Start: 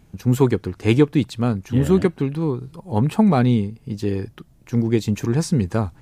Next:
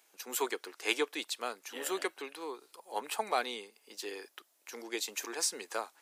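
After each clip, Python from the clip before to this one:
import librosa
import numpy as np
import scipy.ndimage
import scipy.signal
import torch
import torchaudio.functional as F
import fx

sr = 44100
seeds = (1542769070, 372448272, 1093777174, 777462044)

y = scipy.signal.sosfilt(scipy.signal.bessel(6, 590.0, 'highpass', norm='mag', fs=sr, output='sos'), x)
y = fx.tilt_eq(y, sr, slope=2.5)
y = y * 10.0 ** (-6.5 / 20.0)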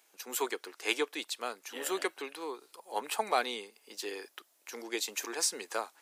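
y = fx.rider(x, sr, range_db=4, speed_s=2.0)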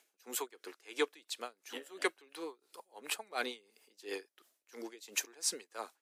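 y = fx.rotary(x, sr, hz=6.7)
y = y * 10.0 ** (-23 * (0.5 - 0.5 * np.cos(2.0 * np.pi * 2.9 * np.arange(len(y)) / sr)) / 20.0)
y = y * 10.0 ** (3.0 / 20.0)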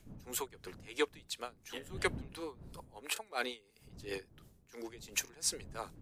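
y = fx.dmg_wind(x, sr, seeds[0], corner_hz=180.0, level_db=-53.0)
y = fx.buffer_glitch(y, sr, at_s=(3.14, 5.25), block=1024, repeats=1)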